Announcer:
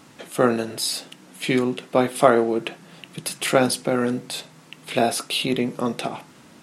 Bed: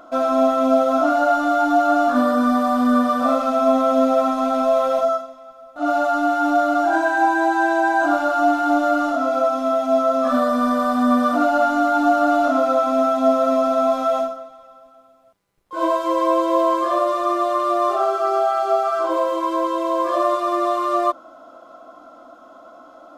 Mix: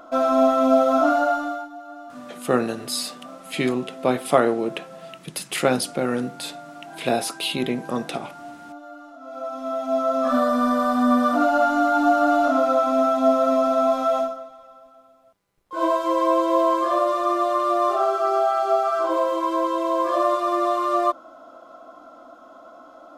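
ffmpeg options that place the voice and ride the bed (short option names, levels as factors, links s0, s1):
-filter_complex "[0:a]adelay=2100,volume=0.794[s0];[1:a]volume=10.6,afade=t=out:st=1.08:d=0.61:silence=0.0794328,afade=t=in:st=9.2:d=1.18:silence=0.0891251[s1];[s0][s1]amix=inputs=2:normalize=0"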